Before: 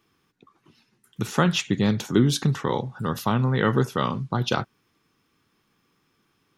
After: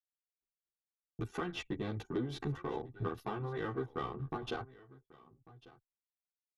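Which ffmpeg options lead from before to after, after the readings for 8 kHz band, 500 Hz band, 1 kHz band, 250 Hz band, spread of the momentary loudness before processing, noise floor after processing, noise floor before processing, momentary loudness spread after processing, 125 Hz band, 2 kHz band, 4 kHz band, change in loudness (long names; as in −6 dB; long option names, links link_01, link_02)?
−25.0 dB, −12.5 dB, −14.0 dB, −17.0 dB, 7 LU, below −85 dBFS, −70 dBFS, 5 LU, −17.0 dB, −15.5 dB, −18.5 dB, −16.0 dB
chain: -filter_complex "[0:a]aeval=exprs='if(lt(val(0),0),0.447*val(0),val(0))':channel_layout=same,anlmdn=3.98,acrossover=split=4800[link_01][link_02];[link_02]acompressor=threshold=-45dB:ratio=4:attack=1:release=60[link_03];[link_01][link_03]amix=inputs=2:normalize=0,highpass=frequency=430:poles=1,aemphasis=mode=reproduction:type=riaa,agate=range=-33dB:threshold=-48dB:ratio=3:detection=peak,equalizer=frequency=11000:width_type=o:width=0.66:gain=15,aecho=1:1:2.6:0.6,acompressor=threshold=-35dB:ratio=6,asoftclip=type=tanh:threshold=-24.5dB,asplit=2[link_04][link_05];[link_05]aecho=0:1:1145:0.0944[link_06];[link_04][link_06]amix=inputs=2:normalize=0,asplit=2[link_07][link_08];[link_08]adelay=11.5,afreqshift=1.2[link_09];[link_07][link_09]amix=inputs=2:normalize=1,volume=4dB"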